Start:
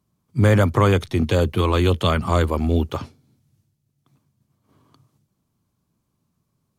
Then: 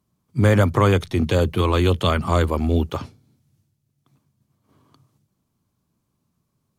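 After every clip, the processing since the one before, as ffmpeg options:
ffmpeg -i in.wav -af "bandreject=frequency=54.57:width_type=h:width=4,bandreject=frequency=109.14:width_type=h:width=4,bandreject=frequency=163.71:width_type=h:width=4" out.wav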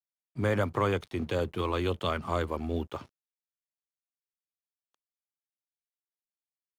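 ffmpeg -i in.wav -af "bass=frequency=250:gain=-6,treble=frequency=4000:gain=-6,aeval=exprs='sgn(val(0))*max(abs(val(0))-0.00501,0)':channel_layout=same,volume=-8.5dB" out.wav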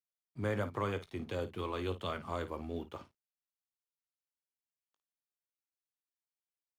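ffmpeg -i in.wav -af "aecho=1:1:19|54:0.237|0.211,volume=-8dB" out.wav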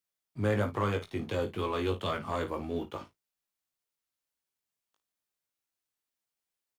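ffmpeg -i in.wav -filter_complex "[0:a]asoftclip=type=tanh:threshold=-26dB,asplit=2[link_01][link_02];[link_02]adelay=19,volume=-8.5dB[link_03];[link_01][link_03]amix=inputs=2:normalize=0,volume=5.5dB" out.wav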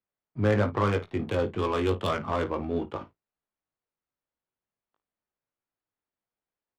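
ffmpeg -i in.wav -af "adynamicsmooth=sensitivity=6:basefreq=1700,volume=5dB" out.wav

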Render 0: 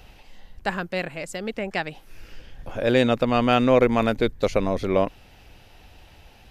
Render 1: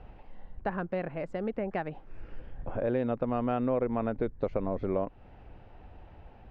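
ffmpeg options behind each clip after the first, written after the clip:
ffmpeg -i in.wav -af "lowpass=1200,acompressor=threshold=-29dB:ratio=3" out.wav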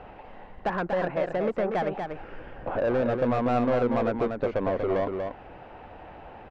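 ffmpeg -i in.wav -filter_complex "[0:a]asplit=2[link_01][link_02];[link_02]highpass=frequency=720:poles=1,volume=21dB,asoftclip=type=tanh:threshold=-17dB[link_03];[link_01][link_03]amix=inputs=2:normalize=0,lowpass=frequency=1600:poles=1,volume=-6dB,aecho=1:1:239:0.531" out.wav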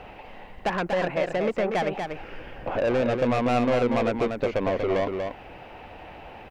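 ffmpeg -i in.wav -af "aexciter=amount=2.3:drive=6.1:freq=2100,volume=1.5dB" out.wav

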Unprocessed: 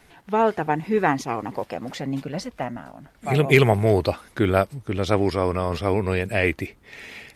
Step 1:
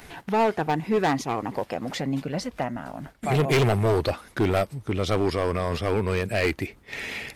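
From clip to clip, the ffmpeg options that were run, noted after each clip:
ffmpeg -i in.wav -af "agate=range=-33dB:threshold=-42dB:ratio=3:detection=peak,acompressor=mode=upward:threshold=-25dB:ratio=2.5,volume=17dB,asoftclip=hard,volume=-17dB" out.wav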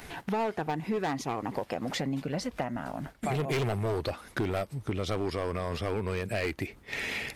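ffmpeg -i in.wav -af "acompressor=threshold=-28dB:ratio=6" out.wav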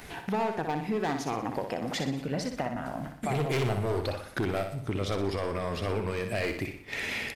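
ffmpeg -i in.wav -af "aecho=1:1:61|122|183|244|305|366:0.447|0.214|0.103|0.0494|0.0237|0.0114" out.wav

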